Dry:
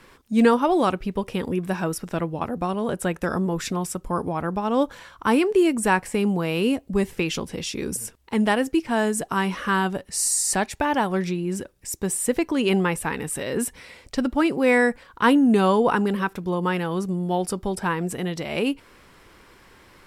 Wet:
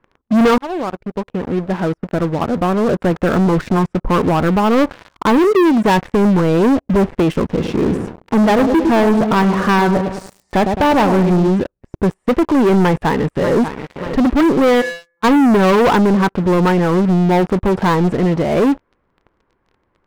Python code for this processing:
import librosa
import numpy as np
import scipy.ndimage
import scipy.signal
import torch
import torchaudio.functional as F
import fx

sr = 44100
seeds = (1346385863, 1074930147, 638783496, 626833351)

y = fx.highpass(x, sr, hz=fx.line((5.37, 260.0), (5.97, 72.0)), slope=12, at=(5.37, 5.97), fade=0.02)
y = fx.echo_wet_lowpass(y, sr, ms=107, feedback_pct=46, hz=900.0, wet_db=-8.5, at=(7.58, 11.47), fade=0.02)
y = fx.echo_throw(y, sr, start_s=12.82, length_s=0.74, ms=590, feedback_pct=50, wet_db=-12.5)
y = fx.comb_fb(y, sr, f0_hz=170.0, decay_s=0.86, harmonics='all', damping=0.0, mix_pct=100, at=(14.8, 15.23), fade=0.02)
y = fx.edit(y, sr, fx.fade_in_from(start_s=0.58, length_s=3.27, floor_db=-22.5), tone=tone)
y = scipy.signal.sosfilt(scipy.signal.butter(2, 1200.0, 'lowpass', fs=sr, output='sos'), y)
y = fx.leveller(y, sr, passes=5)
y = F.gain(torch.from_numpy(y), -2.0).numpy()